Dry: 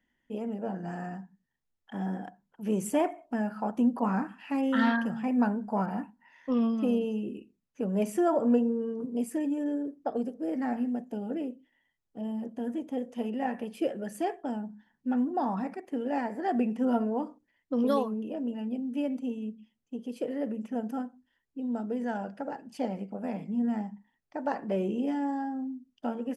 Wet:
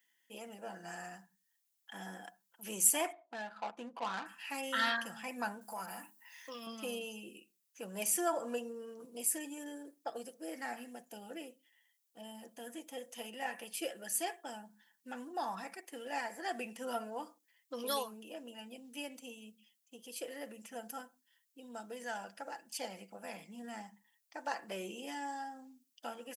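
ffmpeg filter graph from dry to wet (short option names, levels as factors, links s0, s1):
-filter_complex "[0:a]asettb=1/sr,asplit=3[s0][s1][s2];[s0]atrim=end=3.124[s3];[s1]atrim=start=3.12:end=4.26,asetpts=PTS-STARTPTS,afade=t=in:d=0.004:c=qsin,afade=t=out:st=1.136:d=0.004:c=qsin,bass=f=250:g=-7,treble=f=4000:g=6,adynamicsmooth=sensitivity=3.5:basefreq=1200,bandreject=f=5300:w=23[s4];[s2]atrim=start=4.256[s5];[s3][s4]acrossfade=d=0.004:c1=hsin:c2=qsin[s6];[s6][s5]acrossfade=d=0.004:c1=qsin:c2=hsin,asettb=1/sr,asplit=3[s7][s8][s9];[s7]atrim=end=5.614[s10];[s8]atrim=start=5.61:end=6.67,asetpts=PTS-STARTPTS,afade=t=in:d=0.004:c=qsin,afade=t=out:st=1.056:d=0.004:c=qsin,aemphasis=mode=production:type=50kf,bandreject=f=50:t=h:w=6,bandreject=f=100:t=h:w=6,bandreject=f=150:t=h:w=6,bandreject=f=200:t=h:w=6,bandreject=f=250:t=h:w=6,bandreject=f=300:t=h:w=6,bandreject=f=350:t=h:w=6,bandreject=f=400:t=h:w=6,acompressor=threshold=0.0224:ratio=2.5:attack=3.2:release=140:knee=1:detection=peak[s11];[s9]atrim=start=6.666[s12];[s10][s11]acrossfade=d=0.004:c1=hsin:c2=qsin[s13];[s13][s12]acrossfade=d=0.004:c1=qsin:c2=hsin,aderivative,aecho=1:1:5.9:0.37,volume=3.76"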